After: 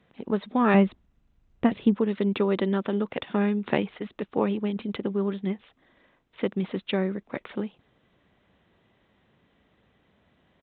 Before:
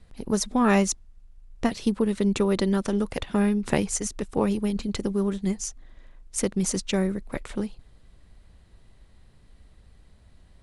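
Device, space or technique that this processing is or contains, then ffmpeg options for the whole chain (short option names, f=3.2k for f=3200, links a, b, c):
Bluetooth headset: -filter_complex "[0:a]asettb=1/sr,asplit=3[a][b][c];[a]atrim=end=0.744[d];[b]atrim=start=0.74:end=1.96,asetpts=PTS-STARTPTS,afade=t=in:d=0.004:c=qsin,afade=t=out:st=1.216:d=0.004:c=qsin,aemphasis=mode=reproduction:type=bsi[e];[c]atrim=start=1.956[f];[d][e]acrossfade=d=0.004:c1=hsin:c2=qsin[g];[g][f]acrossfade=d=0.004:c1=qsin:c2=hsin,highpass=190,aresample=8000,aresample=44100" -ar 16000 -c:a sbc -b:a 64k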